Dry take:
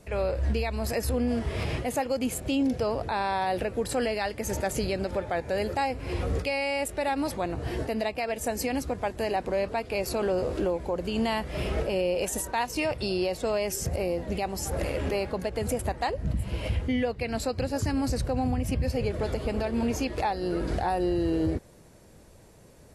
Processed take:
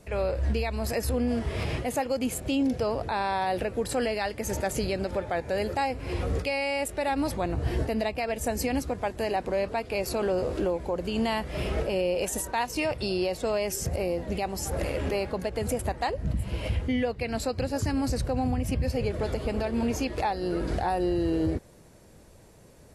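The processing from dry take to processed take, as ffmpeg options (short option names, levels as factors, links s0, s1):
-filter_complex "[0:a]asettb=1/sr,asplit=3[s0][s1][s2];[s0]atrim=end=7.094[s3];[s1]atrim=start=7.09:end=8.8,asetpts=PTS-STARTPTS,afade=t=in:d=0.004:c=qsin,afade=t=out:st=1.706:d=0.004:c=qsin,lowshelf=f=130:g=8[s4];[s2]atrim=start=8.796[s5];[s3][s4]acrossfade=d=0.004:c1=hsin:c2=qsin[s6];[s6][s5]acrossfade=d=0.004:c1=qsin:c2=hsin"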